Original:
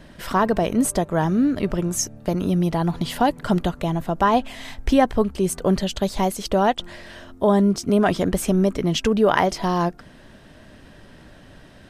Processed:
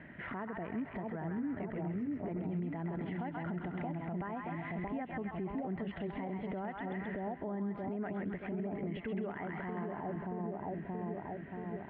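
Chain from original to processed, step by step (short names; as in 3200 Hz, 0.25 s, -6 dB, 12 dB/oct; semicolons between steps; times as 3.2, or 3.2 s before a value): split-band echo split 910 Hz, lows 0.627 s, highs 0.132 s, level -4 dB; compressor 6:1, threshold -24 dBFS, peak gain reduction 13 dB; speaker cabinet 100–2600 Hz, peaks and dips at 530 Hz -6 dB, 1100 Hz -6 dB, 2000 Hz +10 dB; limiter -24.5 dBFS, peak gain reduction 10.5 dB; air absorption 480 m; mismatched tape noise reduction encoder only; gain -5 dB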